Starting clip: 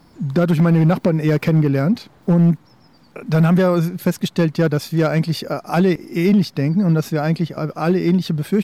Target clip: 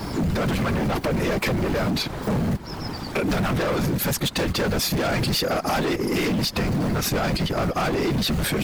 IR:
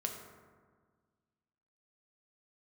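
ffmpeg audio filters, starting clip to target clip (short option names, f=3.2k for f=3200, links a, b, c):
-filter_complex "[0:a]apsyclip=26dB,acrossover=split=180|730|4400[a][b][c][d];[a]acrusher=bits=2:mode=log:mix=0:aa=0.000001[e];[e][b][c][d]amix=inputs=4:normalize=0,afftfilt=real='hypot(re,im)*cos(2*PI*random(0))':imag='hypot(re,im)*sin(2*PI*random(1))':win_size=512:overlap=0.75,acompressor=threshold=-18dB:ratio=6,asoftclip=type=hard:threshold=-19.5dB"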